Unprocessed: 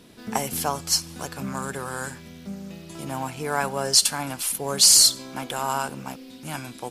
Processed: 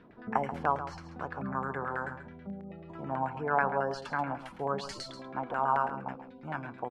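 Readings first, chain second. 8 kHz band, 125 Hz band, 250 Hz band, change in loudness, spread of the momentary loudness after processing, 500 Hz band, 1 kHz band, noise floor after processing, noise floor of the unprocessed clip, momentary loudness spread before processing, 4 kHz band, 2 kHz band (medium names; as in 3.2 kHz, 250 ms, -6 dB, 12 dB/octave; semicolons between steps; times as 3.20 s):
-36.5 dB, -5.5 dB, -5.5 dB, -13.0 dB, 14 LU, -3.0 dB, -1.0 dB, -50 dBFS, -44 dBFS, 23 LU, -27.0 dB, -3.0 dB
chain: spectral gate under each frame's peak -30 dB strong; LFO low-pass saw down 9.2 Hz 700–1900 Hz; on a send: delay 135 ms -11.5 dB; on the sum: trim -6 dB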